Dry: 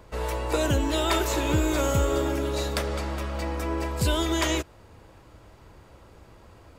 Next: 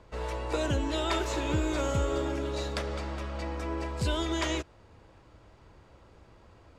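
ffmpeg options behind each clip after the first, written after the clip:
-af "lowpass=6800,volume=0.562"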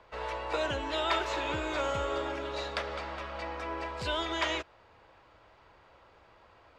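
-filter_complex "[0:a]acrossover=split=520 4600:gain=0.2 1 0.178[s0][s1][s2];[s0][s1][s2]amix=inputs=3:normalize=0,volume=1.41"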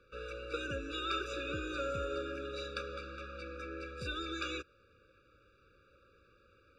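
-af "afftfilt=real='re*eq(mod(floor(b*sr/1024/570),2),0)':imag='im*eq(mod(floor(b*sr/1024/570),2),0)':win_size=1024:overlap=0.75,volume=0.668"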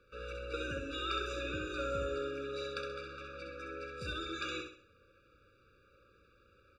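-af "aecho=1:1:65|130|195|260|325:0.562|0.214|0.0812|0.0309|0.0117,volume=0.841"

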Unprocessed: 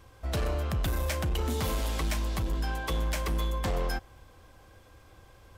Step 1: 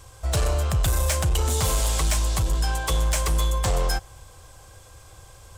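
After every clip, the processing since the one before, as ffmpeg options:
-filter_complex "[0:a]equalizer=f=125:t=o:w=1:g=3,equalizer=f=250:t=o:w=1:g=-12,equalizer=f=2000:t=o:w=1:g=-4,equalizer=f=8000:t=o:w=1:g=12,acrossover=split=3400[s0][s1];[s1]asoftclip=type=tanh:threshold=0.0335[s2];[s0][s2]amix=inputs=2:normalize=0,volume=2.37"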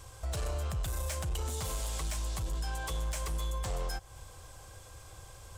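-af "alimiter=level_in=1.19:limit=0.0631:level=0:latency=1:release=224,volume=0.841,volume=0.708"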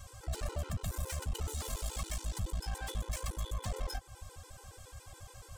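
-af "aeval=exprs='clip(val(0),-1,0.0112)':c=same,afftfilt=real='re*gt(sin(2*PI*7.1*pts/sr)*(1-2*mod(floor(b*sr/1024/260),2)),0)':imag='im*gt(sin(2*PI*7.1*pts/sr)*(1-2*mod(floor(b*sr/1024/260),2)),0)':win_size=1024:overlap=0.75,volume=1.33"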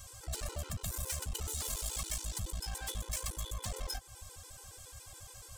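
-af "highshelf=f=3000:g=10.5,volume=0.668"

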